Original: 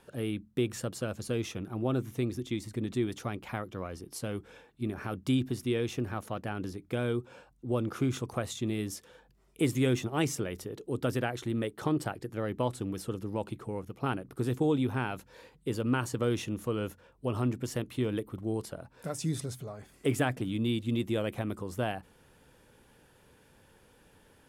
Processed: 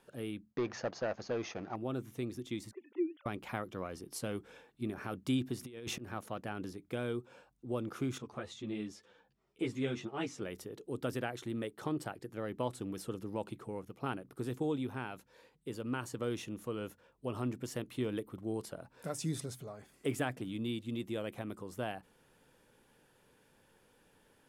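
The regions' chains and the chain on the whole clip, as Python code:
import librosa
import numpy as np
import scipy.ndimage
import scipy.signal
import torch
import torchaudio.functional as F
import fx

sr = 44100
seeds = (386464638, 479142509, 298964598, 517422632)

y = fx.chain(x, sr, fx.peak_eq(hz=730.0, db=14.5, octaves=1.2),
    fx.leveller(passes=2),
    fx.cheby_ripple(hz=6600.0, ripple_db=6), at=(0.52, 1.76))
y = fx.chain(y, sr, fx.sine_speech(),
    fx.bandpass_edges(low_hz=260.0, high_hz=2600.0),
    fx.env_flanger(rest_ms=5.4, full_db=-28.0), at=(2.71, 3.26))
y = fx.chain(y, sr, fx.auto_swell(attack_ms=254.0),
    fx.over_compress(threshold_db=-36.0, ratio=-0.5), at=(5.61, 6.08))
y = fx.chain(y, sr, fx.lowpass(hz=5100.0, slope=12),
    fx.ensemble(), at=(8.18, 10.42))
y = fx.peak_eq(y, sr, hz=64.0, db=-9.5, octaves=1.4)
y = fx.rider(y, sr, range_db=10, speed_s=2.0)
y = F.gain(torch.from_numpy(y), -6.0).numpy()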